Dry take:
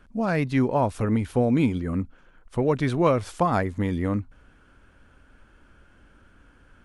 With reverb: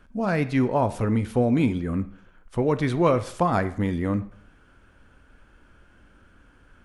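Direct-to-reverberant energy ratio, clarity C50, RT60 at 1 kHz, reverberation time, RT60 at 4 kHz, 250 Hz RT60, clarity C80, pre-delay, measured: 11.0 dB, 15.5 dB, 0.60 s, 0.60 s, 0.55 s, 0.55 s, 18.5 dB, 7 ms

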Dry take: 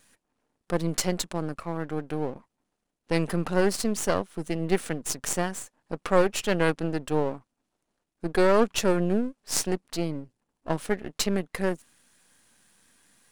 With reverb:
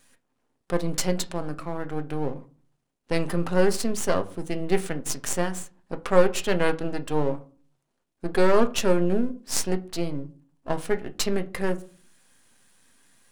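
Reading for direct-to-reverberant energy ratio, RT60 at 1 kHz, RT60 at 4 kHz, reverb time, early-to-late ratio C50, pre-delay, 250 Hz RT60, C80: 8.5 dB, 0.40 s, 0.25 s, 0.40 s, 19.0 dB, 7 ms, 0.55 s, 23.0 dB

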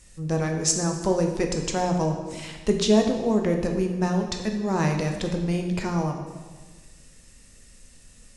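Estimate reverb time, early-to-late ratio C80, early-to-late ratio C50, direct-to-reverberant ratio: 1.4 s, 7.5 dB, 6.0 dB, 3.0 dB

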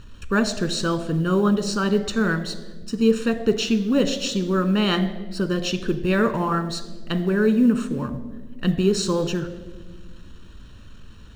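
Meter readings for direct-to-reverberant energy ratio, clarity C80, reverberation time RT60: 9.5 dB, 14.5 dB, 1.4 s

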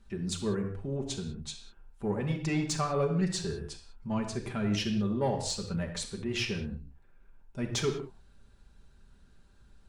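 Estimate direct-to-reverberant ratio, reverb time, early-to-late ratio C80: 1.5 dB, not exponential, 9.5 dB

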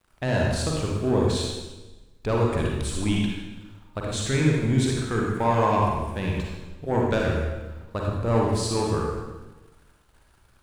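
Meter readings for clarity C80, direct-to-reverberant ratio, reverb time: 2.0 dB, -2.5 dB, 1.1 s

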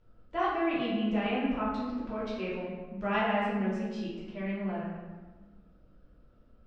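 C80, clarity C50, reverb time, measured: 2.5 dB, 0.0 dB, 1.3 s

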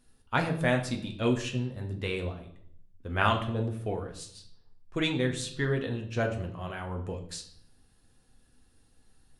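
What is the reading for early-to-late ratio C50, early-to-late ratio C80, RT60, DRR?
10.5 dB, 13.5 dB, 0.65 s, 2.5 dB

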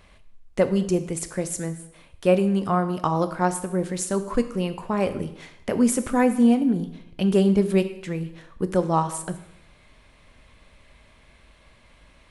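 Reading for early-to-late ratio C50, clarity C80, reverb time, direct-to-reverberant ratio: 12.5 dB, 14.5 dB, 0.80 s, 9.5 dB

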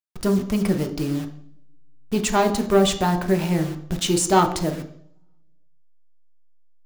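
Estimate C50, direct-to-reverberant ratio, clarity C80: 11.0 dB, 4.5 dB, 14.0 dB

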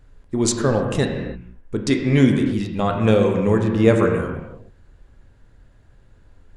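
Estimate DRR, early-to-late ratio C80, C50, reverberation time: 2.0 dB, 5.5 dB, 4.5 dB, not exponential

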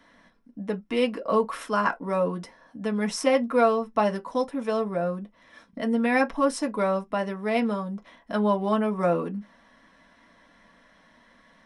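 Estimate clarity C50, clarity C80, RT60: 28.5 dB, 46.5 dB, not exponential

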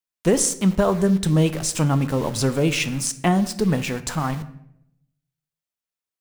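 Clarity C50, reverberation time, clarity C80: 15.0 dB, 0.75 s, 17.0 dB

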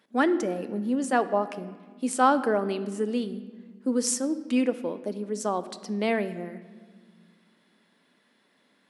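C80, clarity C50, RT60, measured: 15.5 dB, 14.0 dB, 1.6 s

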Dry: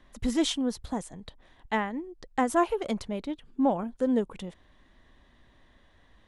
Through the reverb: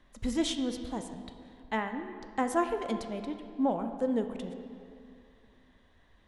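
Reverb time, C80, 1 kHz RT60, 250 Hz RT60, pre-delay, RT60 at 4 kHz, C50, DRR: 2.5 s, 9.0 dB, 2.5 s, 2.5 s, 12 ms, 1.6 s, 8.0 dB, 7.0 dB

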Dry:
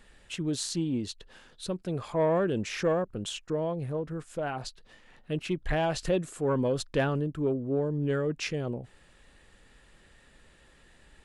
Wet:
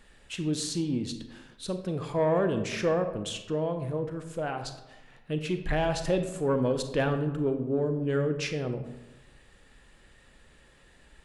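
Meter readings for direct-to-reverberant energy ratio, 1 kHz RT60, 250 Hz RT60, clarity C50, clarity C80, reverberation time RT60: 7.0 dB, 1.0 s, 1.1 s, 9.0 dB, 11.5 dB, 1.0 s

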